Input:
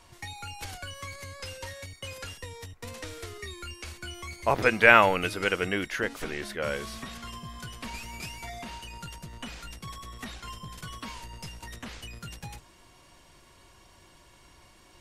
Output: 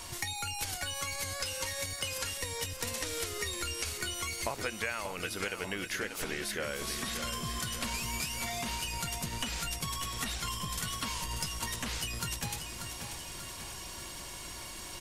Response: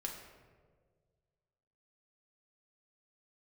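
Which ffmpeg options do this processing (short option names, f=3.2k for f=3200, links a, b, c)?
-af "highshelf=f=4.1k:g=11.5,acompressor=threshold=-41dB:ratio=16,aecho=1:1:588|1176|1764|2352|2940|3528:0.398|0.211|0.112|0.0593|0.0314|0.0166,volume=8.5dB"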